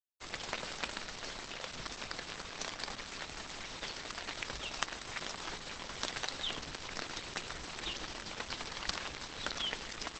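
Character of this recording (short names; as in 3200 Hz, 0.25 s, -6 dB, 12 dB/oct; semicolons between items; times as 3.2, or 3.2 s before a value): a quantiser's noise floor 8-bit, dither none; Opus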